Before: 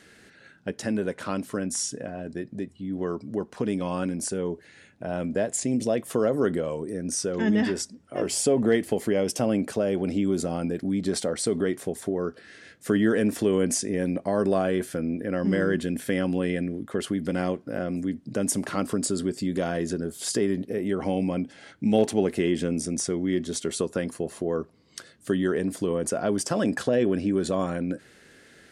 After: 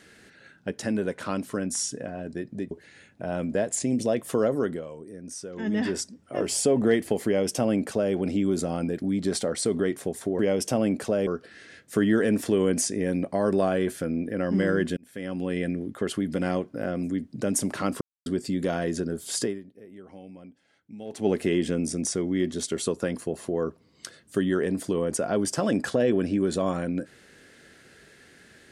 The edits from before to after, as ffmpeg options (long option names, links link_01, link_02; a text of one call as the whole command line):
ffmpeg -i in.wav -filter_complex "[0:a]asplit=11[link_01][link_02][link_03][link_04][link_05][link_06][link_07][link_08][link_09][link_10][link_11];[link_01]atrim=end=2.712[link_12];[link_02]atrim=start=4.518:end=6.69,asetpts=PTS-STARTPTS,afade=type=out:start_time=1.752:duration=0.42:silence=0.316228[link_13];[link_03]atrim=start=6.69:end=7.36,asetpts=PTS-STARTPTS,volume=-10dB[link_14];[link_04]atrim=start=7.36:end=12.202,asetpts=PTS-STARTPTS,afade=type=in:duration=0.42:silence=0.316228[link_15];[link_05]atrim=start=9.068:end=9.952[link_16];[link_06]atrim=start=12.198:end=15.9,asetpts=PTS-STARTPTS,afade=type=out:start_time=3.698:duration=0.004:curve=hsin[link_17];[link_07]atrim=start=15.9:end=18.94,asetpts=PTS-STARTPTS,afade=type=in:duration=0.72,afade=type=out:start_time=3.036:duration=0.004:curve=hsin[link_18];[link_08]atrim=start=18.94:end=19.19,asetpts=PTS-STARTPTS,volume=0[link_19];[link_09]atrim=start=19.19:end=20.59,asetpts=PTS-STARTPTS,afade=type=in:duration=0.004:curve=hsin,afade=type=out:start_time=1.16:duration=0.24:curve=qua:silence=0.112202[link_20];[link_10]atrim=start=20.59:end=21.97,asetpts=PTS-STARTPTS,volume=-19dB[link_21];[link_11]atrim=start=21.97,asetpts=PTS-STARTPTS,afade=type=in:duration=0.24:curve=qua:silence=0.112202[link_22];[link_13][link_14][link_15]concat=n=3:v=0:a=1[link_23];[link_12][link_23]acrossfade=duration=0.004:curve1=hsin:curve2=hsin[link_24];[link_24][link_16]acrossfade=duration=0.004:curve1=hsin:curve2=hsin[link_25];[link_17][link_18][link_19][link_20][link_21][link_22]concat=n=6:v=0:a=1[link_26];[link_25][link_26]acrossfade=duration=0.004:curve1=hsin:curve2=hsin" out.wav